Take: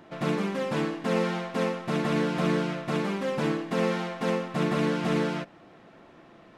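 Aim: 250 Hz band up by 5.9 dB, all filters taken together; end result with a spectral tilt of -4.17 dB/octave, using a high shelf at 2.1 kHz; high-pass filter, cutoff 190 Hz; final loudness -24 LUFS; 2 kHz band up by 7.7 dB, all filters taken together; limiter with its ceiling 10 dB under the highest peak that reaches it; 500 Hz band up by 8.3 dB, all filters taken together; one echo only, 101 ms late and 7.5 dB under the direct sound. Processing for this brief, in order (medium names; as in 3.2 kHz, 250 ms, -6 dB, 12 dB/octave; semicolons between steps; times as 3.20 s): high-pass 190 Hz; peaking EQ 250 Hz +7.5 dB; peaking EQ 500 Hz +7 dB; peaking EQ 2 kHz +4.5 dB; treble shelf 2.1 kHz +8 dB; peak limiter -16 dBFS; delay 101 ms -7.5 dB; trim +1 dB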